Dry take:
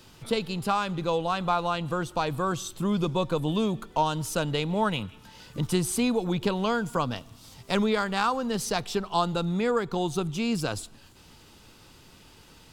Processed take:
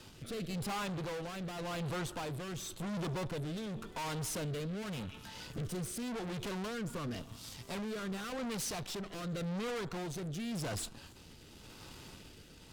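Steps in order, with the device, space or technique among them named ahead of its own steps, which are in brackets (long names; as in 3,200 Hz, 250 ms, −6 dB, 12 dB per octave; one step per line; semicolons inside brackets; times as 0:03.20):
overdriven rotary cabinet (tube saturation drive 41 dB, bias 0.7; rotating-speaker cabinet horn 0.9 Hz)
level +5.5 dB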